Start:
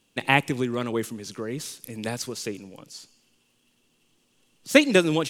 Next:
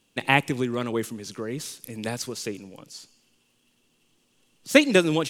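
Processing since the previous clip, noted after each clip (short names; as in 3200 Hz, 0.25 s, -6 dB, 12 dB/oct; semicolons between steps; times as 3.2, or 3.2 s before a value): nothing audible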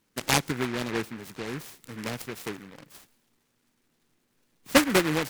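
high shelf 4200 Hz -7 dB; noise-modulated delay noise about 1500 Hz, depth 0.22 ms; gain -3 dB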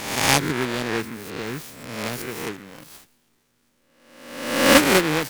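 spectral swells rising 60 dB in 0.96 s; gain +2.5 dB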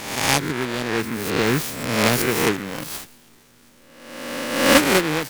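AGC gain up to 15 dB; gain -1 dB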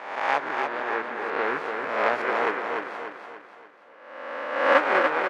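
Butterworth band-pass 970 Hz, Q 0.79; on a send: feedback echo 0.29 s, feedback 45%, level -5 dB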